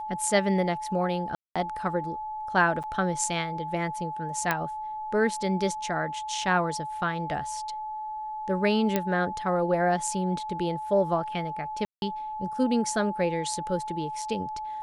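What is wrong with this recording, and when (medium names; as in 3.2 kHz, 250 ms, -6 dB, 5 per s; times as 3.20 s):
whine 860 Hz -32 dBFS
1.35–1.56 s: dropout 206 ms
2.83–2.84 s: dropout 7.6 ms
4.51 s: pop -10 dBFS
8.96 s: pop -10 dBFS
11.85–12.02 s: dropout 171 ms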